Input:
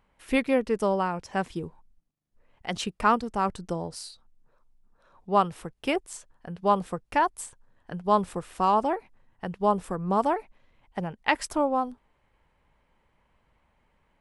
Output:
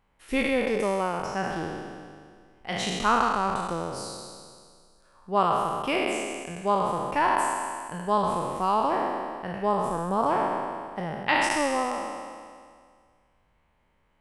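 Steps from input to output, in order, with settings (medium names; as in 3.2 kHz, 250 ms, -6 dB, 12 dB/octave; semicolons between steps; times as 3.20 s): spectral sustain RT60 2.00 s; trim -3.5 dB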